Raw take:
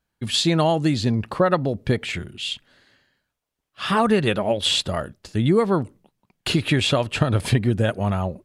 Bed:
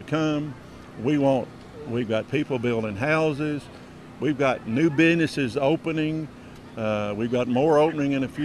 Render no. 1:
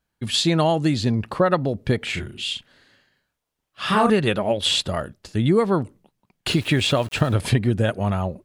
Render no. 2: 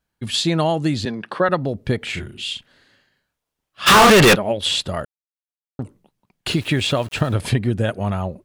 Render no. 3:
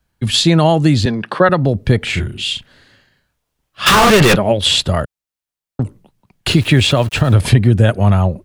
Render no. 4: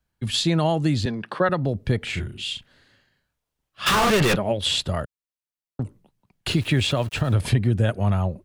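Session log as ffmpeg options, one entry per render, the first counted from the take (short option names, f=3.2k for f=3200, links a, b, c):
-filter_complex "[0:a]asettb=1/sr,asplit=3[a][b][c];[a]atrim=end=2.024[d];[b]atrim=start=2.02:end=4.1,asetpts=PTS-STARTPTS,afade=t=in:d=0.004:c=qsin,afade=t=out:st=2.076:d=0.004:c=qsin,asplit=2[e][f];[f]adelay=38,volume=-4.5dB[g];[e][g]amix=inputs=2:normalize=0,atrim=end_sample=91728[h];[c]atrim=start=4.096[i];[d][h]acrossfade=d=0.004:c1=hsin:c2=qsin[j];[j][i]acrossfade=d=0.004:c1=qsin:c2=hsin,asettb=1/sr,asplit=3[k][l][m];[k]atrim=end=6.484[n];[l]atrim=start=6.48:end=7.36,asetpts=PTS-STARTPTS,afade=t=in:d=0.004:c=qsin,afade=t=out:st=0.876:d=0.004:c=qsin,aeval=exprs='val(0)*gte(abs(val(0)),0.0126)':c=same[o];[m]atrim=start=7.356[p];[n][o]acrossfade=d=0.004:c1=hsin:c2=qsin[q];[q][p]acrossfade=d=0.004:c1=qsin:c2=hsin"
-filter_complex "[0:a]asettb=1/sr,asplit=3[a][b][c];[a]atrim=end=1.054[d];[b]atrim=start=1.05:end=1.49,asetpts=PTS-STARTPTS,afade=t=in:d=0.004:c=qsin,afade=t=out:st=0.436:d=0.004:c=qsin,highpass=f=180:w=0.5412,highpass=f=180:w=1.3066,equalizer=f=240:t=q:w=4:g=-5,equalizer=f=1.6k:t=q:w=4:g=9,equalizer=f=3.4k:t=q:w=4:g=6,equalizer=f=7.2k:t=q:w=4:g=-9,lowpass=f=9.7k:w=0.5412,lowpass=f=9.7k:w=1.3066[e];[c]atrim=start=1.486[f];[d][e]acrossfade=d=0.004:c1=hsin:c2=qsin[g];[g][f]acrossfade=d=0.004:c1=qsin:c2=hsin,asplit=3[h][i][j];[h]afade=t=out:st=3.86:d=0.02[k];[i]asplit=2[l][m];[m]highpass=f=720:p=1,volume=41dB,asoftclip=type=tanh:threshold=-4dB[n];[l][n]amix=inputs=2:normalize=0,lowpass=f=7.8k:p=1,volume=-6dB,afade=t=in:st=3.86:d=0.02,afade=t=out:st=4.34:d=0.02[o];[j]afade=t=in:st=4.34:d=0.02[p];[k][o][p]amix=inputs=3:normalize=0,asplit=3[q][r][s];[q]atrim=end=5.05,asetpts=PTS-STARTPTS,afade=t=out:st=5.046:d=0.004:c=hsin[t];[r]atrim=start=5.05:end=5.79,asetpts=PTS-STARTPTS,volume=0[u];[s]atrim=start=5.79,asetpts=PTS-STARTPTS,afade=t=in:d=0.004:c=hsin[v];[t][u][v]concat=n=3:v=0:a=1"
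-filter_complex "[0:a]acrossover=split=140|940|4900[a][b][c][d];[a]acontrast=82[e];[e][b][c][d]amix=inputs=4:normalize=0,alimiter=level_in=7dB:limit=-1dB:release=50:level=0:latency=1"
-af "volume=-9.5dB"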